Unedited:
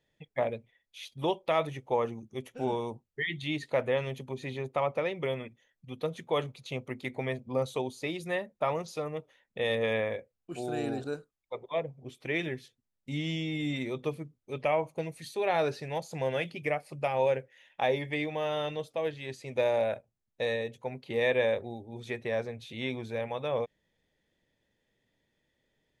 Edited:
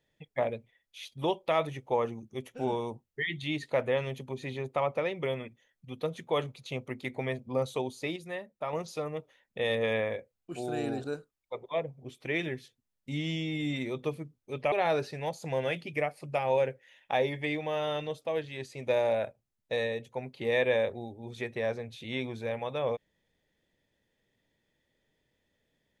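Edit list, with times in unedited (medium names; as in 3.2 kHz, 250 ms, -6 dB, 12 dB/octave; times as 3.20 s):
8.16–8.73 s: gain -6 dB
14.72–15.41 s: delete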